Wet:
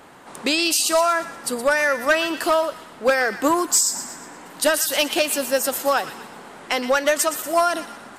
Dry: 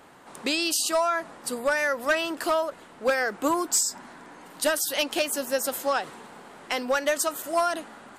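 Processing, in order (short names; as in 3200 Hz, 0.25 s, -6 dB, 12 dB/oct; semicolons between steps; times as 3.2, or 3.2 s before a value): thin delay 0.119 s, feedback 46%, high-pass 1600 Hz, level -10.5 dB; gain +5.5 dB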